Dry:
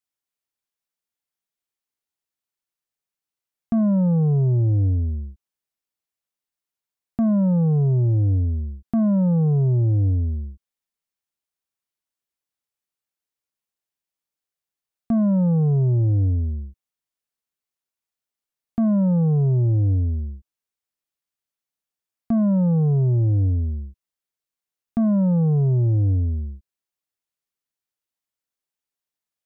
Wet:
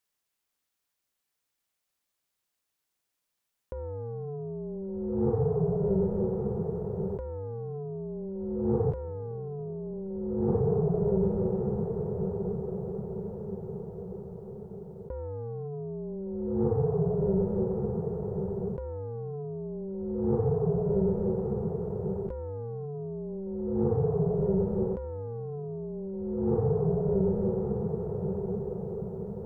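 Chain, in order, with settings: ring modulator 290 Hz; echo that smears into a reverb 1237 ms, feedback 52%, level -14.5 dB; compressor with a negative ratio -33 dBFS, ratio -1; trim +2 dB

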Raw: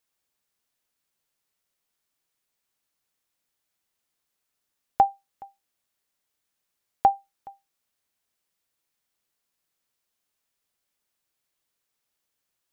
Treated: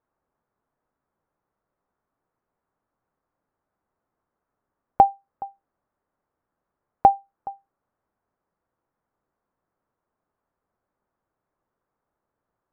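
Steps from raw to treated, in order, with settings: low-pass 1.3 kHz 24 dB/octave; in parallel at +2.5 dB: compression, threshold -31 dBFS, peak gain reduction 16 dB; on the sum: trim +2.5 dB

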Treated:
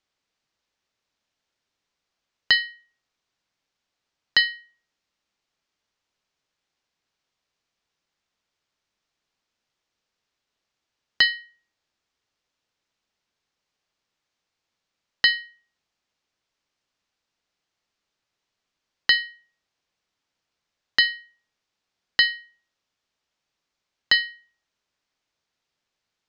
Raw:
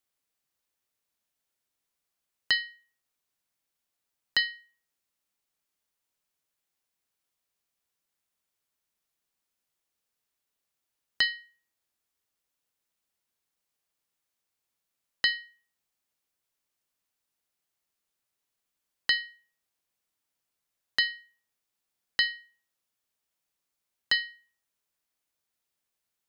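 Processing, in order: low-pass 6 kHz 24 dB/octave; trim +7 dB

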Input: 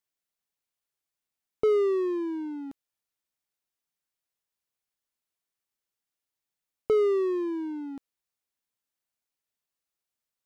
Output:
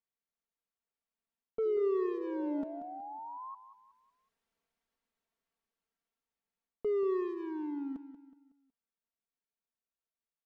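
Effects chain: Doppler pass-by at 4.18 s, 11 m/s, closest 9.4 m; low-pass 1.4 kHz 6 dB/octave; comb 4.4 ms, depth 68%; reverse; compression 12:1, threshold -38 dBFS, peak gain reduction 13 dB; reverse; painted sound rise, 1.65–3.55 s, 350–1100 Hz -53 dBFS; on a send: feedback delay 185 ms, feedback 41%, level -12 dB; on the sum: trim +9 dB

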